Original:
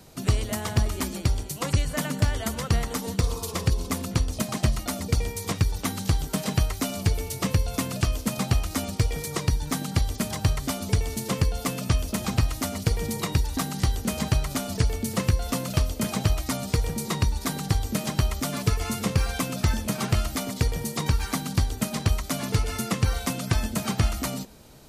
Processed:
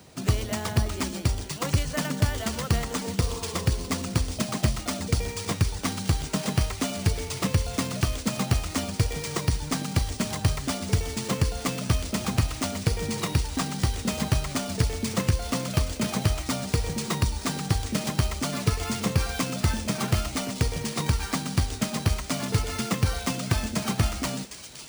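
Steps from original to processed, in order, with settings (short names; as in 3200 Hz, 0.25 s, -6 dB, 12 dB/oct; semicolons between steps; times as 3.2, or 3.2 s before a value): HPF 55 Hz; thin delay 0.759 s, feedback 62%, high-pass 3800 Hz, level -7.5 dB; careless resampling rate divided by 3×, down none, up hold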